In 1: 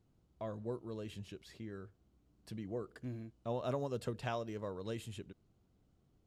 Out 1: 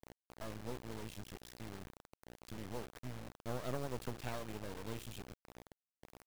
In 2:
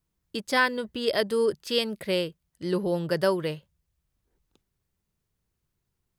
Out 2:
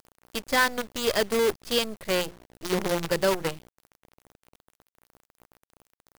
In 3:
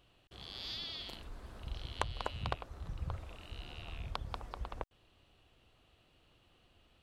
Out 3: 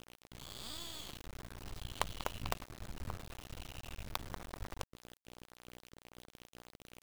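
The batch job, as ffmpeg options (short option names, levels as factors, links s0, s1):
-af "bandreject=f=175.9:t=h:w=4,bandreject=f=351.8:t=h:w=4,aeval=exprs='val(0)+0.00251*(sin(2*PI*60*n/s)+sin(2*PI*2*60*n/s)/2+sin(2*PI*3*60*n/s)/3+sin(2*PI*4*60*n/s)/4+sin(2*PI*5*60*n/s)/5)':c=same,acrusher=bits=5:dc=4:mix=0:aa=0.000001"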